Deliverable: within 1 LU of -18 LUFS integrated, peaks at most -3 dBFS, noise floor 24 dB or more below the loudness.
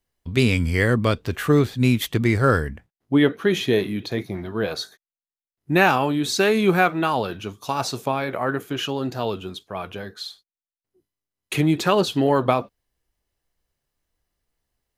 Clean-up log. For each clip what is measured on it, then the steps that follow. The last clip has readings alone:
loudness -21.5 LUFS; peak level -1.5 dBFS; loudness target -18.0 LUFS
-> trim +3.5 dB; peak limiter -3 dBFS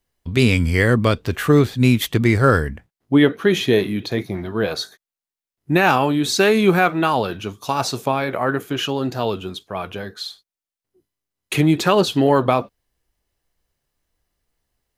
loudness -18.5 LUFS; peak level -3.0 dBFS; noise floor -91 dBFS

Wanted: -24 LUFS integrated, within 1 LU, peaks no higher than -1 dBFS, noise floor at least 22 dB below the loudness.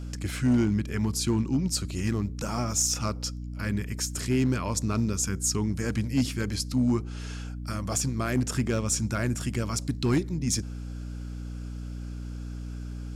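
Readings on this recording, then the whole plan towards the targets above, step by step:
clipped samples 0.4%; clipping level -17.0 dBFS; hum 60 Hz; highest harmonic 300 Hz; hum level -33 dBFS; loudness -28.5 LUFS; peak level -17.0 dBFS; loudness target -24.0 LUFS
-> clip repair -17 dBFS; hum notches 60/120/180/240/300 Hz; trim +4.5 dB

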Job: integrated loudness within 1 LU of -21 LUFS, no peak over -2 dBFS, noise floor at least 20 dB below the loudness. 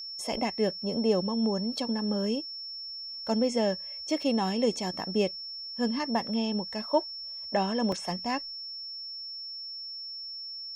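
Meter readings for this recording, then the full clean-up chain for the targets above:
dropouts 2; longest dropout 2.9 ms; steady tone 5.4 kHz; tone level -37 dBFS; loudness -30.5 LUFS; peak level -12.5 dBFS; loudness target -21.0 LUFS
-> interpolate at 4.22/7.92 s, 2.9 ms; band-stop 5.4 kHz, Q 30; trim +9.5 dB

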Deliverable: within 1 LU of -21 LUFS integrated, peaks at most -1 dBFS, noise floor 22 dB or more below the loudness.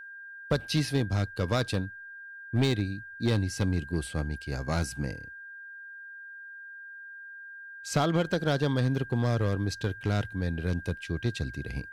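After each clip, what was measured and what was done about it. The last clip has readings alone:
clipped samples 0.6%; clipping level -18.5 dBFS; steady tone 1.6 kHz; tone level -42 dBFS; loudness -30.0 LUFS; peak level -18.5 dBFS; loudness target -21.0 LUFS
-> clip repair -18.5 dBFS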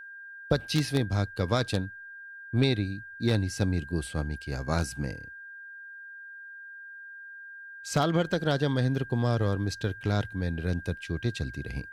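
clipped samples 0.0%; steady tone 1.6 kHz; tone level -42 dBFS
-> band-stop 1.6 kHz, Q 30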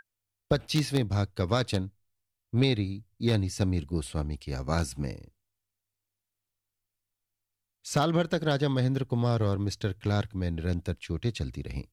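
steady tone not found; loudness -29.5 LUFS; peak level -10.0 dBFS; loudness target -21.0 LUFS
-> trim +8.5 dB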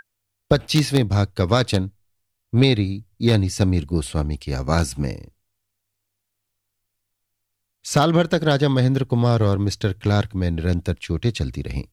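loudness -21.0 LUFS; peak level -1.5 dBFS; noise floor -78 dBFS

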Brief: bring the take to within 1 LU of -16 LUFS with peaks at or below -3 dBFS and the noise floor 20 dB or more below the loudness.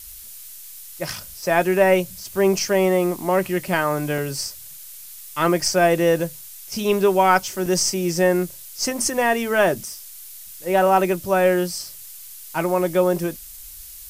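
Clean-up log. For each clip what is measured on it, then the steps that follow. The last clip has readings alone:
dropouts 2; longest dropout 3.1 ms; noise floor -40 dBFS; noise floor target -41 dBFS; loudness -20.5 LUFS; peak level -3.0 dBFS; loudness target -16.0 LUFS
-> interpolate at 4.18/7.66 s, 3.1 ms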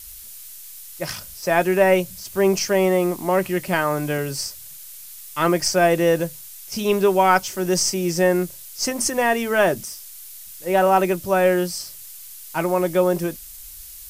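dropouts 0; noise floor -40 dBFS; noise floor target -41 dBFS
-> noise print and reduce 6 dB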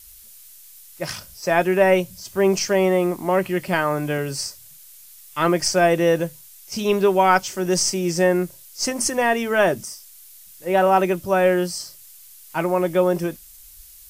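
noise floor -46 dBFS; loudness -20.5 LUFS; peak level -3.0 dBFS; loudness target -16.0 LUFS
-> trim +4.5 dB; peak limiter -3 dBFS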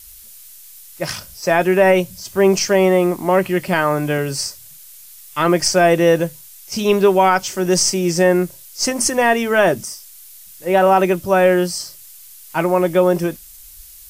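loudness -16.5 LUFS; peak level -3.0 dBFS; noise floor -41 dBFS

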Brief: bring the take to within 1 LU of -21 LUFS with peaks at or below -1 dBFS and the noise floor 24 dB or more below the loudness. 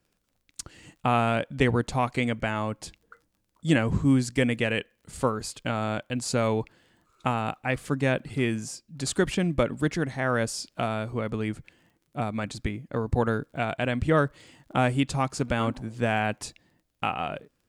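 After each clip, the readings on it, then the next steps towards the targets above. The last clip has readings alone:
tick rate 29 per s; loudness -27.5 LUFS; peak level -8.0 dBFS; loudness target -21.0 LUFS
-> de-click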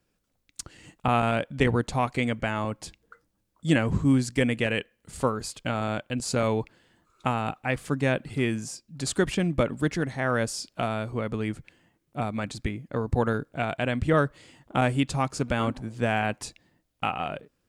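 tick rate 0.45 per s; loudness -27.5 LUFS; peak level -8.0 dBFS; loudness target -21.0 LUFS
-> trim +6.5 dB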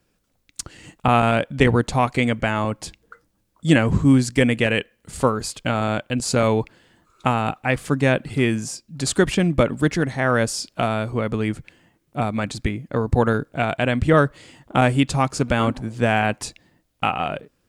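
loudness -21.0 LUFS; peak level -1.5 dBFS; noise floor -69 dBFS

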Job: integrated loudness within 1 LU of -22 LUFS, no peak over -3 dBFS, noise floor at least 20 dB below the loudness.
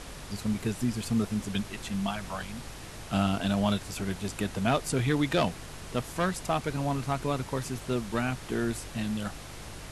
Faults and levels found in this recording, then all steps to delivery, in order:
hum 50 Hz; highest harmonic 150 Hz; hum level -46 dBFS; noise floor -43 dBFS; noise floor target -51 dBFS; loudness -31.0 LUFS; peak level -10.5 dBFS; loudness target -22.0 LUFS
-> de-hum 50 Hz, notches 3; noise print and reduce 8 dB; trim +9 dB; peak limiter -3 dBFS

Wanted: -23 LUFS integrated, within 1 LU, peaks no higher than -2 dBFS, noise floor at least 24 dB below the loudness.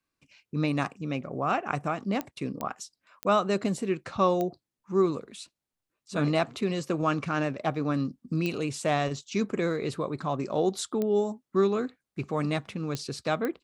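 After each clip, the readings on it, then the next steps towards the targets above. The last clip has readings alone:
clicks found 8; loudness -29.5 LUFS; peak level -10.5 dBFS; loudness target -23.0 LUFS
-> de-click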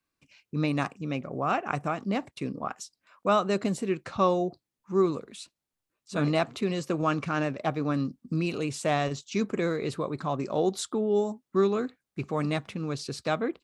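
clicks found 0; loudness -29.5 LUFS; peak level -10.5 dBFS; loudness target -23.0 LUFS
-> trim +6.5 dB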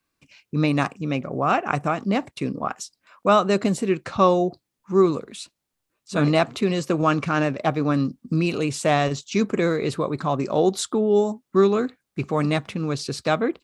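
loudness -23.0 LUFS; peak level -4.0 dBFS; noise floor -81 dBFS

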